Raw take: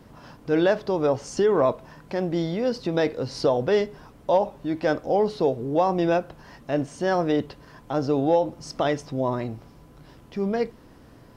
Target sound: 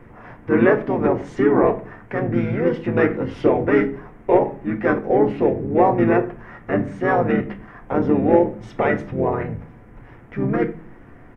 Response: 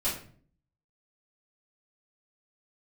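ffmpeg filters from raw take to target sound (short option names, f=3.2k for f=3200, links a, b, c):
-filter_complex "[0:a]acontrast=23,asplit=3[a][b][c];[b]asetrate=29433,aresample=44100,atempo=1.49831,volume=-2dB[d];[c]asetrate=33038,aresample=44100,atempo=1.33484,volume=-4dB[e];[a][d][e]amix=inputs=3:normalize=0,highshelf=f=2.9k:t=q:w=3:g=-13,asplit=2[f][g];[1:a]atrim=start_sample=2205,asetrate=57330,aresample=44100[h];[g][h]afir=irnorm=-1:irlink=0,volume=-11dB[i];[f][i]amix=inputs=2:normalize=0,volume=-5.5dB"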